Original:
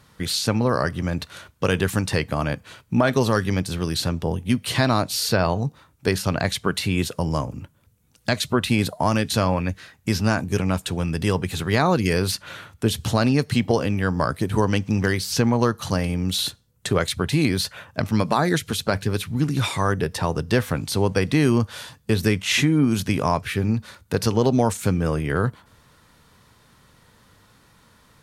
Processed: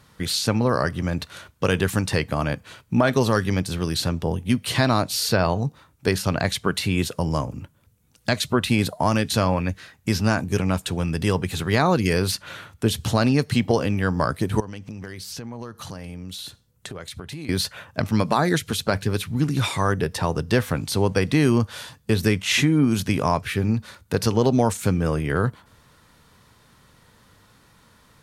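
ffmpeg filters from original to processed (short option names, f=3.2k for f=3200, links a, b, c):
-filter_complex "[0:a]asettb=1/sr,asplit=3[a][b][c];[a]atrim=end=14.604[d];[b]atrim=start=14.6:end=17.49,asetpts=PTS-STARTPTS,afade=t=in:d=0.004:c=qsin,afade=t=out:st=2.886:d=0.004:c=qsin,acompressor=threshold=-33dB:ratio=5:attack=3.2:release=140:knee=1:detection=peak[e];[c]atrim=start=17.486[f];[d][e]acrossfade=d=0.004:c1=hsin:c2=qsin[g];[g][f]acrossfade=d=0.004:c1=qsin:c2=hsin"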